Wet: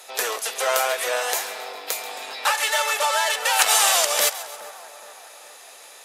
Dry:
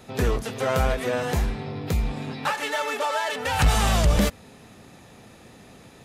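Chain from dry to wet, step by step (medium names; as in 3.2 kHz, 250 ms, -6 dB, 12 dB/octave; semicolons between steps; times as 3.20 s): high-pass 550 Hz 24 dB/octave; peaking EQ 12 kHz +12 dB 2.3 oct; on a send: two-band feedback delay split 1.6 kHz, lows 417 ms, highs 135 ms, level -15 dB; on the sum: trim +3 dB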